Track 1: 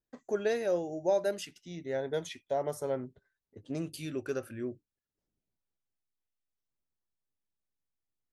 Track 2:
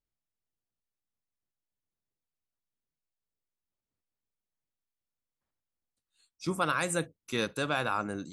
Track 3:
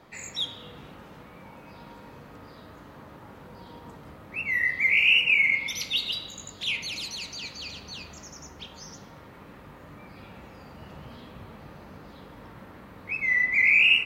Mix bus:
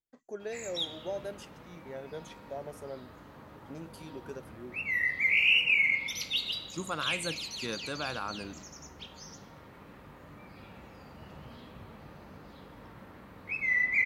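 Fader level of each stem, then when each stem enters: -9.0 dB, -6.0 dB, -4.0 dB; 0.00 s, 0.30 s, 0.40 s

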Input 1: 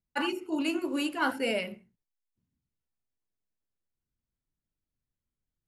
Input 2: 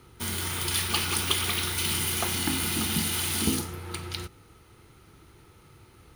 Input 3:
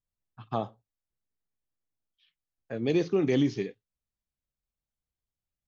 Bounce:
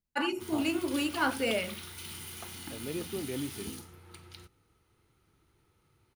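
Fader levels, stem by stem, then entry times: -0.5 dB, -15.5 dB, -11.5 dB; 0.00 s, 0.20 s, 0.00 s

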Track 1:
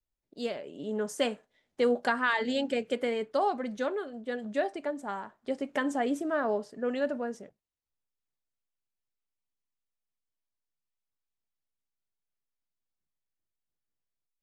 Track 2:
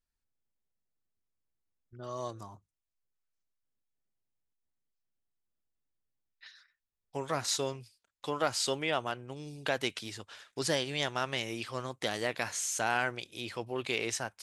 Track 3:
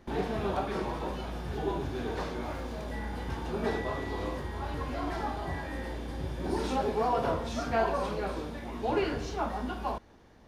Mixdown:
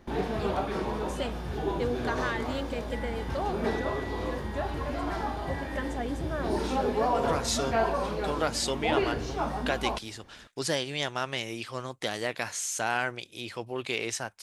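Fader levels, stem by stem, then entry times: -5.5 dB, +1.5 dB, +1.5 dB; 0.00 s, 0.00 s, 0.00 s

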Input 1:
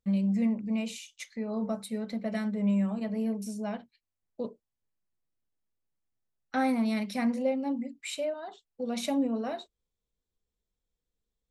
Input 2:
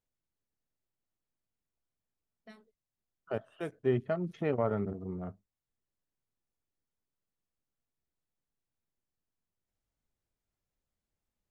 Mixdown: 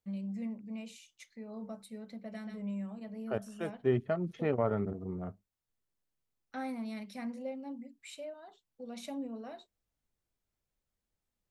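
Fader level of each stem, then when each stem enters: -11.5 dB, 0.0 dB; 0.00 s, 0.00 s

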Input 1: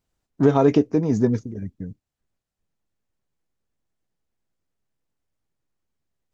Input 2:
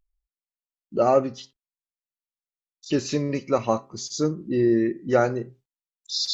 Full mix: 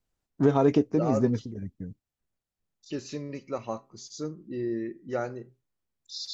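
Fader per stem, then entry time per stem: -5.0 dB, -11.0 dB; 0.00 s, 0.00 s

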